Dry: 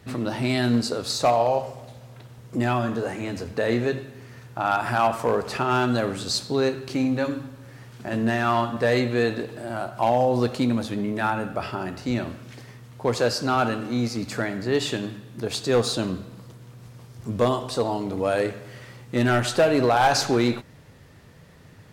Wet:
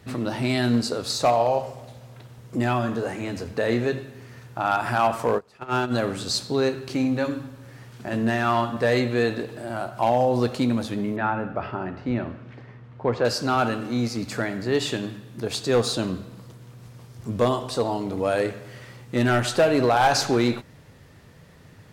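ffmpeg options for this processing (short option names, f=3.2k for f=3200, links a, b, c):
-filter_complex "[0:a]asplit=3[a][b][c];[a]afade=t=out:st=5.37:d=0.02[d];[b]agate=range=-24dB:threshold=-22dB:ratio=16:release=100:detection=peak,afade=t=in:st=5.37:d=0.02,afade=t=out:st=5.91:d=0.02[e];[c]afade=t=in:st=5.91:d=0.02[f];[d][e][f]amix=inputs=3:normalize=0,asettb=1/sr,asplit=3[g][h][i];[g]atrim=end=11.164[j];[h]atrim=start=11.16:end=13.25,asetpts=PTS-STARTPTS,afade=t=in:d=0.004:c=qsin,afade=t=out:st=2.086:d=0.004:c=qsin,lowpass=2.1k[k];[i]atrim=start=13.246[l];[j][k]acrossfade=d=0.004:c1=hsin:c2=qsin[m];[m][l]acrossfade=d=0.004:c1=qsin:c2=hsin"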